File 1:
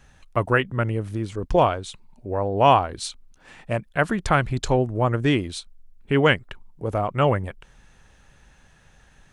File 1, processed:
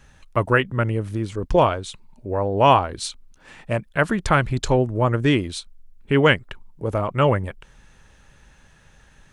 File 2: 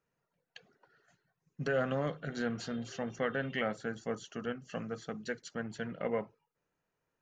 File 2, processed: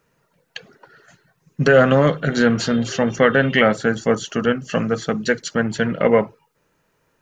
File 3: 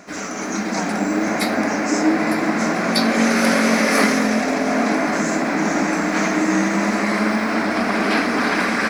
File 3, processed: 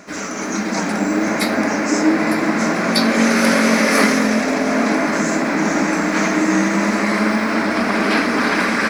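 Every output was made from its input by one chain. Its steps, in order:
notch filter 730 Hz, Q 12
normalise the peak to −2 dBFS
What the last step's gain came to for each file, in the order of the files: +2.0, +19.0, +2.0 decibels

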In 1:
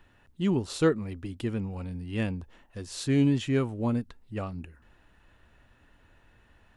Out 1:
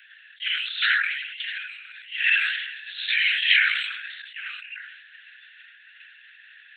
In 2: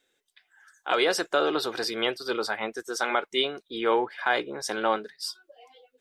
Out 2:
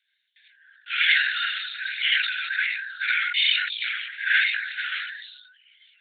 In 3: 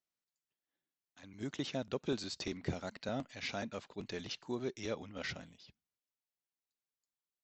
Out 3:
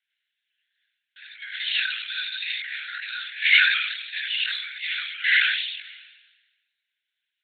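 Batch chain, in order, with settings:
reverb whose tail is shaped and stops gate 110 ms rising, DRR −4 dB
linear-prediction vocoder at 8 kHz whisper
Butterworth high-pass 1,500 Hz 96 dB per octave
dynamic equaliser 2,100 Hz, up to +8 dB, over −42 dBFS, Q 1
level that may fall only so fast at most 47 dB per second
loudness normalisation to −23 LKFS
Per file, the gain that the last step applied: +11.5, −2.0, +16.0 decibels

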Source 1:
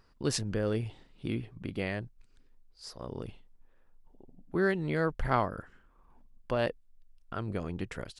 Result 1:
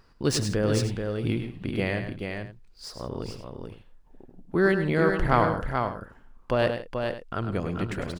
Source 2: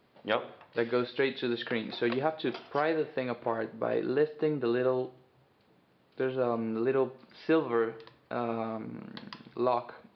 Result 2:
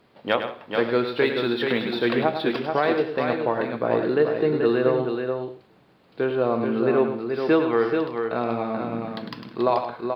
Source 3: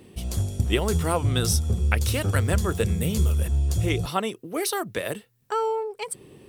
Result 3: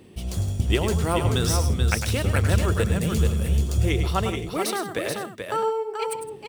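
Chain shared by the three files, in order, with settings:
running median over 3 samples
on a send: multi-tap delay 103/162/433/520 ms −8.5/−17.5/−5.5/−16.5 dB
on the sum: normalise the peak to −6 dBFS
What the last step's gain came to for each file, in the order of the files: +5.5, +6.5, 0.0 decibels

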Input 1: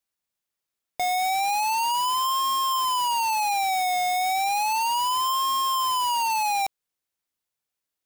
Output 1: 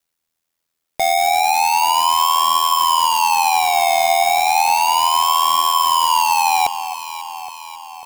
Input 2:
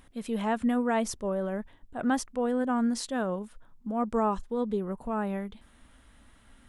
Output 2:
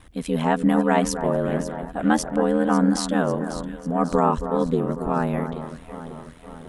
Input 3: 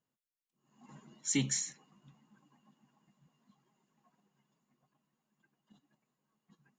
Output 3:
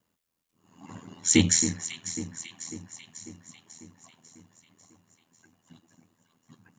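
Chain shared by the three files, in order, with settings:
delay that swaps between a low-pass and a high-pass 273 ms, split 1,800 Hz, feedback 75%, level −10 dB
ring modulation 41 Hz
normalise the peak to −6 dBFS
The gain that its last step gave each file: +11.0, +10.0, +14.5 decibels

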